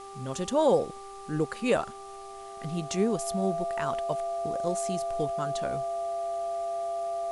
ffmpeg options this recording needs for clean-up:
ffmpeg -i in.wav -af "bandreject=frequency=394.4:width_type=h:width=4,bandreject=frequency=788.8:width_type=h:width=4,bandreject=frequency=1183.2:width_type=h:width=4,bandreject=frequency=680:width=30,afwtdn=0.0022" out.wav

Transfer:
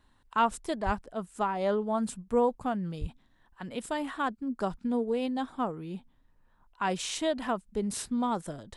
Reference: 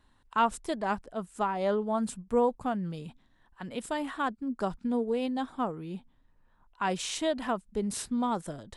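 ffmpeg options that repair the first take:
ffmpeg -i in.wav -filter_complex "[0:a]asplit=3[link_01][link_02][link_03];[link_01]afade=type=out:start_time=0.85:duration=0.02[link_04];[link_02]highpass=frequency=140:width=0.5412,highpass=frequency=140:width=1.3066,afade=type=in:start_time=0.85:duration=0.02,afade=type=out:start_time=0.97:duration=0.02[link_05];[link_03]afade=type=in:start_time=0.97:duration=0.02[link_06];[link_04][link_05][link_06]amix=inputs=3:normalize=0,asplit=3[link_07][link_08][link_09];[link_07]afade=type=out:start_time=3:duration=0.02[link_10];[link_08]highpass=frequency=140:width=0.5412,highpass=frequency=140:width=1.3066,afade=type=in:start_time=3:duration=0.02,afade=type=out:start_time=3.12:duration=0.02[link_11];[link_09]afade=type=in:start_time=3.12:duration=0.02[link_12];[link_10][link_11][link_12]amix=inputs=3:normalize=0" out.wav

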